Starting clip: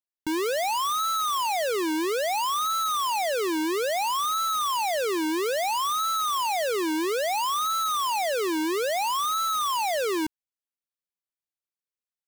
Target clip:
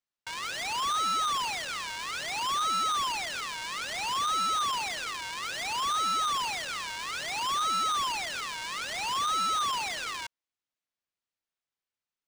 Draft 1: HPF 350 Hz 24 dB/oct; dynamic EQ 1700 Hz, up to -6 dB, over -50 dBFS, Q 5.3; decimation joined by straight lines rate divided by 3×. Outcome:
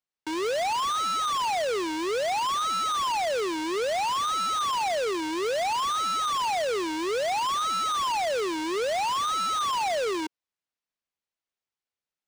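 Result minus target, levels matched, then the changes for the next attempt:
250 Hz band +12.5 dB
change: HPF 1100 Hz 24 dB/oct

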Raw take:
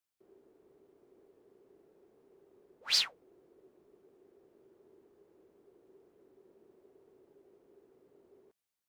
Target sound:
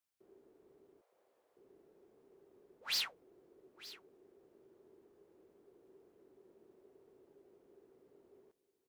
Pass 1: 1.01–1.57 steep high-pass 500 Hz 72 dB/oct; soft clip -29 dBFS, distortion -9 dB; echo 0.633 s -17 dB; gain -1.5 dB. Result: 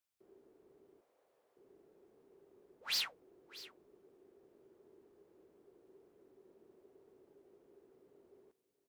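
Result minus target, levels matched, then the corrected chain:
echo 0.281 s early
1.01–1.57 steep high-pass 500 Hz 72 dB/oct; soft clip -29 dBFS, distortion -9 dB; echo 0.914 s -17 dB; gain -1.5 dB

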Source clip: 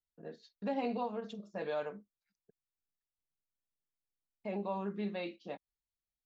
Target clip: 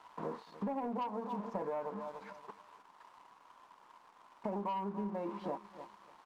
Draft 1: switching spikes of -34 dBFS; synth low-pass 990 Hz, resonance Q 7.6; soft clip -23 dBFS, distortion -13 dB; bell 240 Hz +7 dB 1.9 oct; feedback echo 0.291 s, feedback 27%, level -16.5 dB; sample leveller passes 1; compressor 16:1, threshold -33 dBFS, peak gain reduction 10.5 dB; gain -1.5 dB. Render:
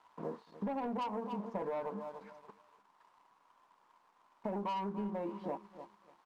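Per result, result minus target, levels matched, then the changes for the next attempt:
soft clip: distortion +10 dB; switching spikes: distortion -7 dB
change: soft clip -15.5 dBFS, distortion -23 dB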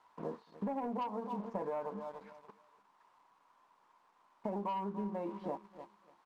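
switching spikes: distortion -7 dB
change: switching spikes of -27 dBFS

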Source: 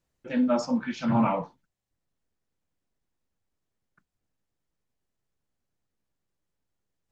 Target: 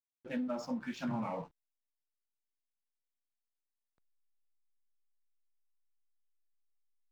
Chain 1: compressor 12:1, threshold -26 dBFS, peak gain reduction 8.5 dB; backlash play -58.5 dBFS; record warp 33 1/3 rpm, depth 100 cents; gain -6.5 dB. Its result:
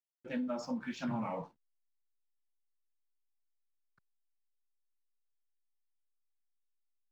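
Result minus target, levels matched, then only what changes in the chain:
backlash: distortion -8 dB
change: backlash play -46.5 dBFS

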